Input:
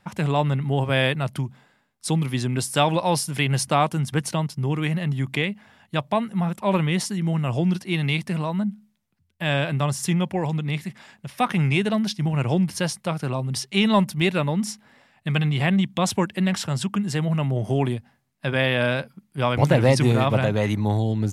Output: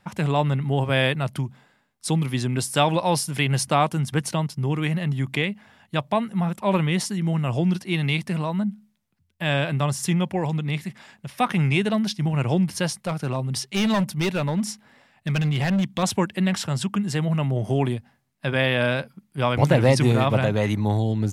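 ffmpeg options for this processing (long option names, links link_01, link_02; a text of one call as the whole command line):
ffmpeg -i in.wav -filter_complex "[0:a]asettb=1/sr,asplit=3[link_01][link_02][link_03];[link_01]atrim=end=13.054[link_04];[link_02]atrim=start=13.05:end=16.03,asetpts=PTS-STARTPTS,afade=type=in:duration=0.004:curve=qsin,afade=type=out:start_time=2.976:duration=0.004:curve=qsin,asoftclip=type=hard:threshold=-18dB[link_05];[link_03]atrim=start=16.026[link_06];[link_04][link_05]acrossfade=duration=0.004:curve1=hsin:curve2=qsin[link_07];[link_07][link_06]acrossfade=duration=0.004:curve1=qsin:curve2=hsin" out.wav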